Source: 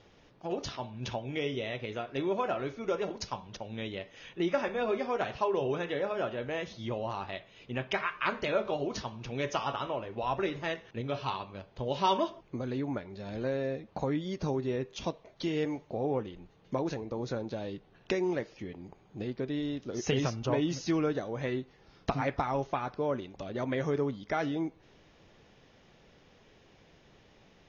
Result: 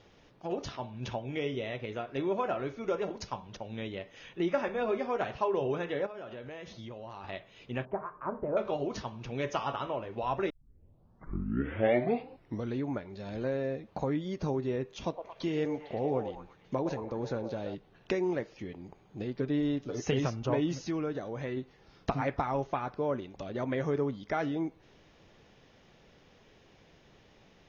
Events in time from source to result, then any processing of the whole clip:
6.06–7.24 compressor, threshold -40 dBFS
7.85–8.57 LPF 1000 Hz 24 dB/oct
10.5 tape start 2.31 s
14.95–17.75 delay with a stepping band-pass 0.113 s, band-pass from 640 Hz, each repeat 0.7 oct, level -5 dB
19.34–20.04 comb 6.9 ms
20.83–21.57 compressor 1.5:1, threshold -36 dBFS
whole clip: dynamic EQ 4800 Hz, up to -5 dB, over -52 dBFS, Q 0.71

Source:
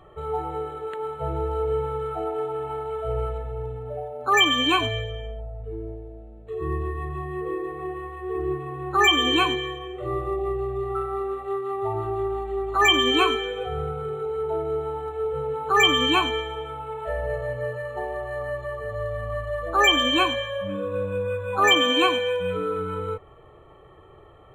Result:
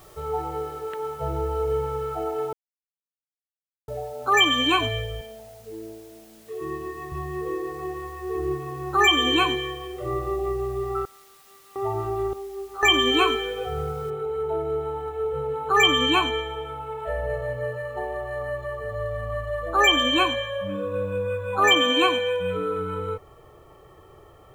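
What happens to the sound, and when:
2.53–3.88 mute
5.21–7.12 speaker cabinet 210–4500 Hz, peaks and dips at 220 Hz +4 dB, 510 Hz -6 dB, 1300 Hz -5 dB
11.05–11.76 band-pass 4100 Hz, Q 3.3
12.33–12.83 resonator 79 Hz, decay 0.57 s, mix 100%
14.1 noise floor step -55 dB -70 dB

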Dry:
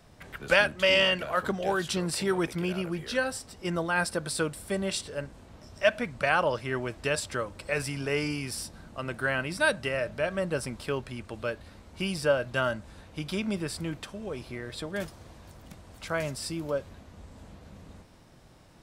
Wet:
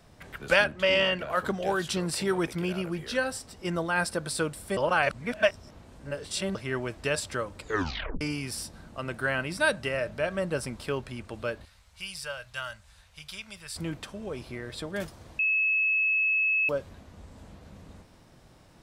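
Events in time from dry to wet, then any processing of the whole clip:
0.64–1.3 high shelf 5000 Hz -10.5 dB
4.77–6.55 reverse
7.58 tape stop 0.63 s
11.65–13.76 passive tone stack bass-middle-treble 10-0-10
15.39–16.69 bleep 2590 Hz -22 dBFS

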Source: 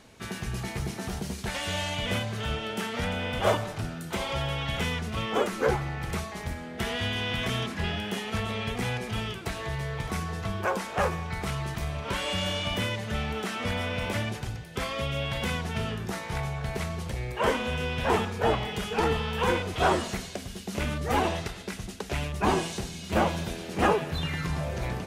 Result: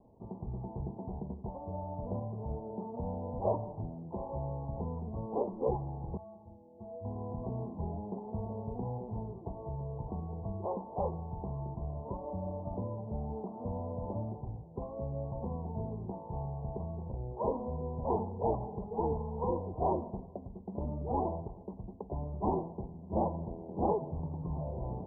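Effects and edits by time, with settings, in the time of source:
6.17–7.05 metallic resonator 100 Hz, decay 0.35 s, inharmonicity 0.03
whole clip: steep low-pass 1000 Hz 96 dB/oct; gain -6 dB

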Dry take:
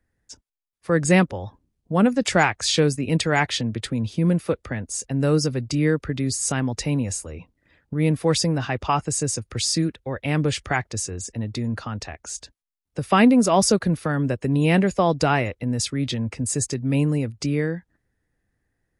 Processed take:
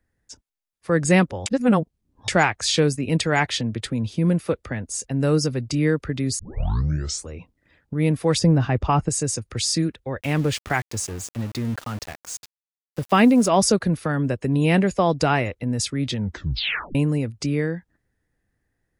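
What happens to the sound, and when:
1.46–2.28 reverse
6.39 tape start 0.91 s
8.39–9.09 tilt -2.5 dB/oct
10.21–13.47 sample gate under -34.5 dBFS
16.16 tape stop 0.79 s

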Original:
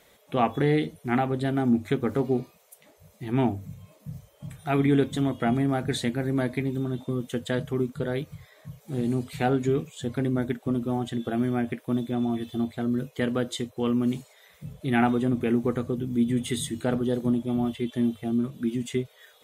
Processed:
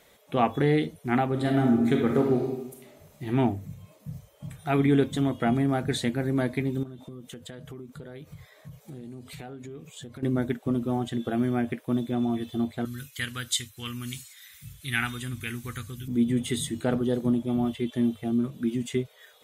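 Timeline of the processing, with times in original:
1.29–3.28 reverb throw, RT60 0.88 s, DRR 1 dB
6.83–10.23 compressor 8:1, threshold -38 dBFS
12.85–16.08 EQ curve 110 Hz 0 dB, 160 Hz -11 dB, 640 Hz -22 dB, 1500 Hz +2 dB, 10000 Hz +12 dB

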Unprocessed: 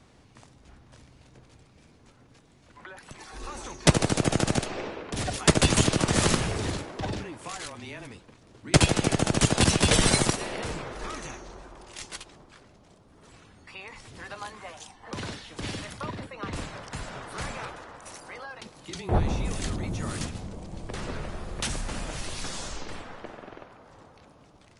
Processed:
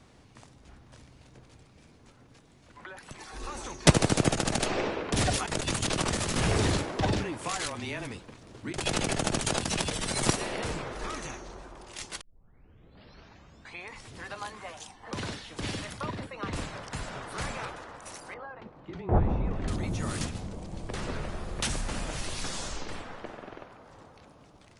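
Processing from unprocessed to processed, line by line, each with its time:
4.35–10.23 negative-ratio compressor -29 dBFS
12.21 tape start 1.71 s
18.34–19.68 LPF 1400 Hz

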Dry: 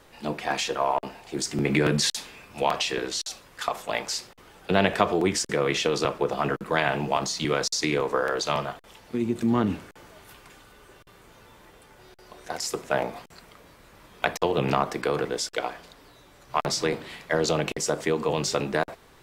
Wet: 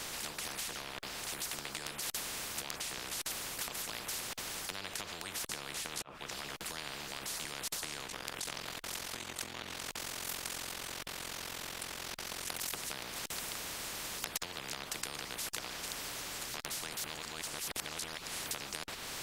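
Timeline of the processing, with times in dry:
6.02–6.57 fade in quadratic
8.06–12.73 ring modulator 22 Hz
16.97–18.51 reverse
whole clip: high shelf 11000 Hz -5 dB; compressor 4:1, threshold -36 dBFS; spectral compressor 10:1; gain +1 dB

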